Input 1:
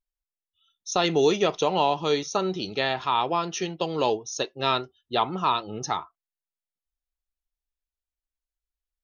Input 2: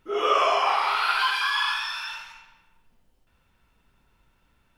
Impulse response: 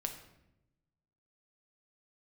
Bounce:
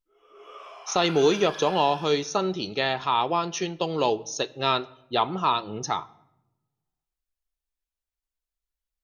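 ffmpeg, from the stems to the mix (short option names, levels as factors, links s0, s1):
-filter_complex "[0:a]volume=0.841,asplit=3[s0][s1][s2];[s1]volume=0.282[s3];[1:a]volume=0.141,asplit=3[s4][s5][s6];[s5]volume=0.0841[s7];[s6]volume=0.473[s8];[s2]apad=whole_len=210493[s9];[s4][s9]sidechaingate=range=0.0224:threshold=0.00631:ratio=16:detection=peak[s10];[2:a]atrim=start_sample=2205[s11];[s3][s7]amix=inputs=2:normalize=0[s12];[s12][s11]afir=irnorm=-1:irlink=0[s13];[s8]aecho=0:1:245:1[s14];[s0][s10][s13][s14]amix=inputs=4:normalize=0"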